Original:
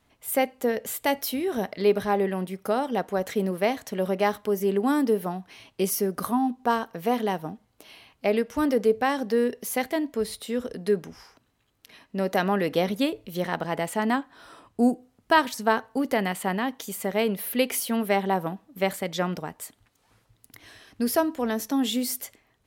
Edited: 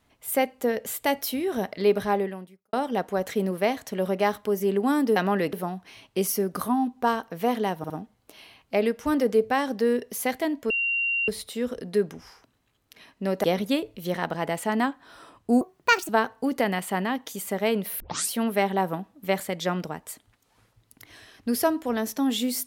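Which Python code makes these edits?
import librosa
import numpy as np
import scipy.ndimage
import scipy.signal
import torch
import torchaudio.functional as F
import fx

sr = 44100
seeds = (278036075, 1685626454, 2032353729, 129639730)

y = fx.edit(x, sr, fx.fade_out_span(start_s=2.14, length_s=0.59, curve='qua'),
    fx.stutter(start_s=7.41, slice_s=0.06, count=3),
    fx.insert_tone(at_s=10.21, length_s=0.58, hz=2760.0, db=-22.5),
    fx.move(start_s=12.37, length_s=0.37, to_s=5.16),
    fx.speed_span(start_s=14.91, length_s=0.71, speed=1.48),
    fx.tape_start(start_s=17.53, length_s=0.31), tone=tone)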